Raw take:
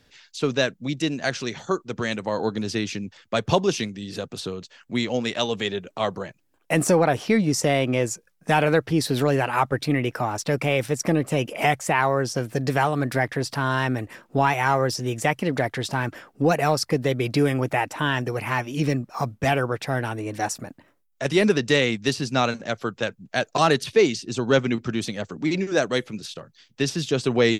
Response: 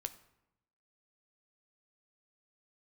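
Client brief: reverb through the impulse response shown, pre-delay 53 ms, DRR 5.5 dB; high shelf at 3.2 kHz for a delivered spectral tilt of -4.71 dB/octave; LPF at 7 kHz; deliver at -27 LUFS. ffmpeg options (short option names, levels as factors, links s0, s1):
-filter_complex "[0:a]lowpass=7000,highshelf=f=3200:g=4.5,asplit=2[s0][s1];[1:a]atrim=start_sample=2205,adelay=53[s2];[s1][s2]afir=irnorm=-1:irlink=0,volume=0.668[s3];[s0][s3]amix=inputs=2:normalize=0,volume=0.596"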